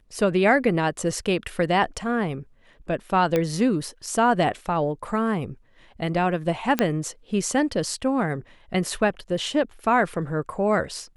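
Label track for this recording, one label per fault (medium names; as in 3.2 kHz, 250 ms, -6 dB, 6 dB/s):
3.360000	3.360000	pop -10 dBFS
6.790000	6.790000	pop -6 dBFS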